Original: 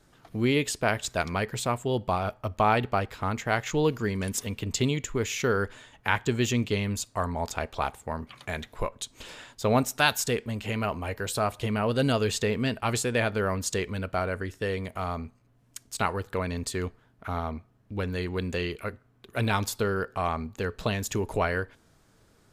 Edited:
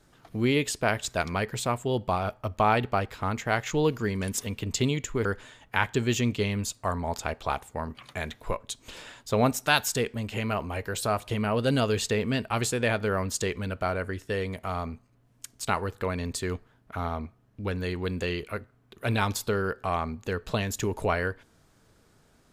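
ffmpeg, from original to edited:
ffmpeg -i in.wav -filter_complex "[0:a]asplit=2[link_01][link_02];[link_01]atrim=end=5.252[link_03];[link_02]atrim=start=5.568[link_04];[link_03][link_04]acrossfade=duration=0.004:curve1=hsin:curve2=hsin" out.wav

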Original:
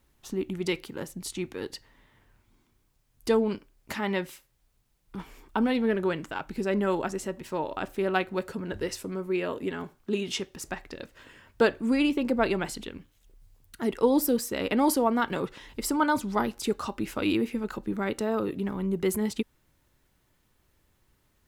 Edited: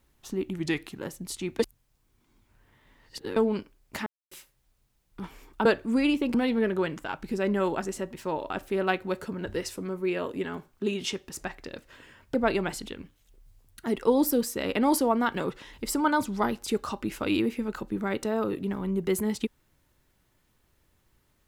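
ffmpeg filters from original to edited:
ffmpeg -i in.wav -filter_complex "[0:a]asplit=10[link_01][link_02][link_03][link_04][link_05][link_06][link_07][link_08][link_09][link_10];[link_01]atrim=end=0.594[link_11];[link_02]atrim=start=0.59:end=0.94,asetpts=PTS-STARTPTS,asetrate=39249,aresample=44100[link_12];[link_03]atrim=start=0.936:end=1.552[link_13];[link_04]atrim=start=1.548:end=3.322,asetpts=PTS-STARTPTS,areverse[link_14];[link_05]atrim=start=3.318:end=4.02,asetpts=PTS-STARTPTS,afade=type=out:start_time=0.698:duration=0.004:curve=hsin[link_15];[link_06]atrim=start=4.02:end=4.27,asetpts=PTS-STARTPTS,volume=0[link_16];[link_07]atrim=start=4.27:end=5.612,asetpts=PTS-STARTPTS,afade=type=in:duration=0.004:curve=hsin[link_17];[link_08]atrim=start=11.608:end=12.302[link_18];[link_09]atrim=start=5.608:end=11.612[link_19];[link_10]atrim=start=12.298[link_20];[link_11][link_12]acrossfade=duration=0.004:curve1=hsin:curve2=hsin[link_21];[link_21][link_13]acrossfade=duration=0.004:curve1=hsin:curve2=hsin[link_22];[link_22][link_14]acrossfade=duration=0.004:curve1=hsin:curve2=hsin[link_23];[link_15][link_16][link_17]concat=n=3:v=0:a=1[link_24];[link_23][link_24]acrossfade=duration=0.004:curve1=hsin:curve2=hsin[link_25];[link_25][link_18]acrossfade=duration=0.004:curve1=hsin:curve2=hsin[link_26];[link_26][link_19]acrossfade=duration=0.004:curve1=hsin:curve2=hsin[link_27];[link_27][link_20]acrossfade=duration=0.004:curve1=hsin:curve2=hsin" out.wav

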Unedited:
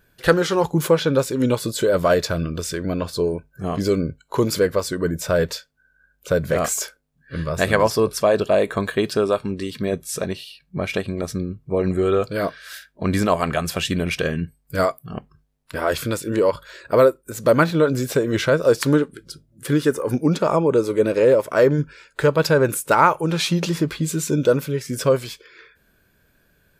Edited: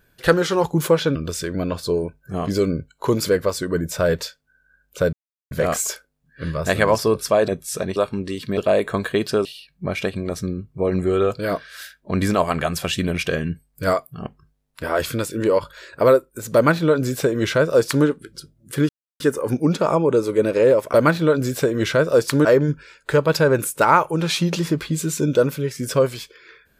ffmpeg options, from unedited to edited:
ffmpeg -i in.wav -filter_complex "[0:a]asplit=10[link_01][link_02][link_03][link_04][link_05][link_06][link_07][link_08][link_09][link_10];[link_01]atrim=end=1.152[link_11];[link_02]atrim=start=2.448:end=6.43,asetpts=PTS-STARTPTS,afade=type=out:start_time=3.978:duration=0.004:curve=hsin,apad=pad_dur=0.38[link_12];[link_03]atrim=start=6.43:end=8.402,asetpts=PTS-STARTPTS,afade=type=in:duration=0.004:curve=hsin[link_13];[link_04]atrim=start=9.888:end=10.372[link_14];[link_05]atrim=start=9.278:end=9.892[link_15];[link_06]atrim=start=8.398:end=9.282[link_16];[link_07]atrim=start=10.368:end=19.81,asetpts=PTS-STARTPTS,afade=type=out:start_time=9.438:duration=0.004:curve=hsin,apad=pad_dur=0.31[link_17];[link_08]atrim=start=19.81:end=21.552,asetpts=PTS-STARTPTS,afade=type=in:duration=0.004:curve=hsin[link_18];[link_09]atrim=start=17.468:end=18.982[link_19];[link_10]atrim=start=21.548[link_20];[link_12][link_13]concat=n=2:v=0:a=1[link_21];[link_11][link_21]acrossfade=duration=0.004:curve1=hsin:curve2=hsin[link_22];[link_22][link_14]acrossfade=duration=0.004:curve1=hsin:curve2=hsin[link_23];[link_23][link_15]acrossfade=duration=0.004:curve1=hsin:curve2=hsin[link_24];[link_24][link_16]acrossfade=duration=0.004:curve1=hsin:curve2=hsin[link_25];[link_17][link_18]concat=n=2:v=0:a=1[link_26];[link_25][link_26]acrossfade=duration=0.004:curve1=hsin:curve2=hsin[link_27];[link_27][link_19]acrossfade=duration=0.004:curve1=hsin:curve2=hsin[link_28];[link_28][link_20]acrossfade=duration=0.004:curve1=hsin:curve2=hsin" out.wav

